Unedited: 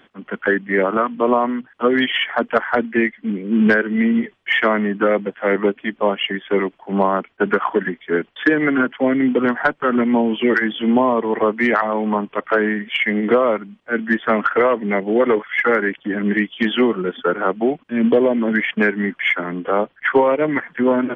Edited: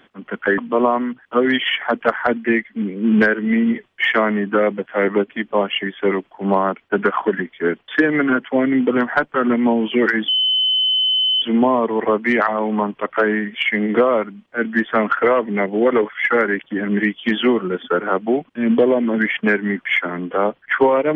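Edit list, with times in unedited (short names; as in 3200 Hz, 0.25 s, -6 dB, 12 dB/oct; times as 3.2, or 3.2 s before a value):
0.58–1.06 cut
10.76 add tone 3040 Hz -14 dBFS 1.14 s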